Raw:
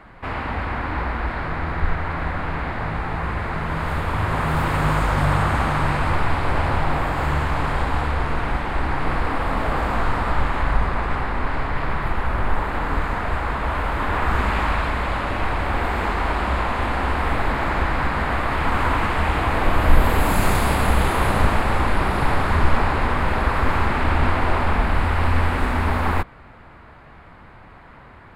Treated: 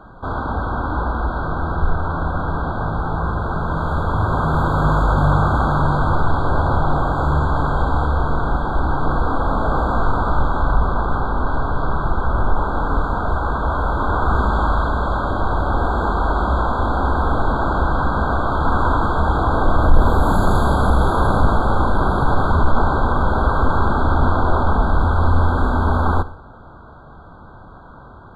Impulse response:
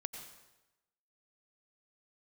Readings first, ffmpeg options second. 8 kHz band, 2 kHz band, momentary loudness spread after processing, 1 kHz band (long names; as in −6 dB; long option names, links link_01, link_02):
can't be measured, −2.0 dB, 5 LU, +3.0 dB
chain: -filter_complex "[0:a]highshelf=frequency=3700:gain=-11.5,acontrast=62,asplit=2[link_01][link_02];[1:a]atrim=start_sample=2205,asetrate=88200,aresample=44100[link_03];[link_02][link_03]afir=irnorm=-1:irlink=0,volume=1.5dB[link_04];[link_01][link_04]amix=inputs=2:normalize=0,afftfilt=real='re*eq(mod(floor(b*sr/1024/1600),2),0)':imag='im*eq(mod(floor(b*sr/1024/1600),2),0)':win_size=1024:overlap=0.75,volume=-5dB"